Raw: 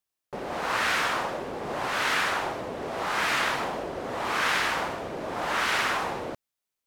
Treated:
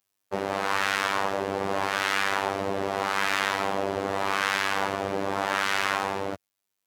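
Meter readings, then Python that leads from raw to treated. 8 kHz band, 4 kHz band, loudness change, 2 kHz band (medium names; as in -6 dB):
0.0 dB, 0.0 dB, +0.5 dB, 0.0 dB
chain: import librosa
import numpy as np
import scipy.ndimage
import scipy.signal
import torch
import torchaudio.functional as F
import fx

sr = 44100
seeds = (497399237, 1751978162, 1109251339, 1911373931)

y = scipy.signal.sosfilt(scipy.signal.butter(2, 56.0, 'highpass', fs=sr, output='sos'), x)
y = fx.rider(y, sr, range_db=5, speed_s=0.5)
y = fx.robotise(y, sr, hz=98.1)
y = y * librosa.db_to_amplitude(3.5)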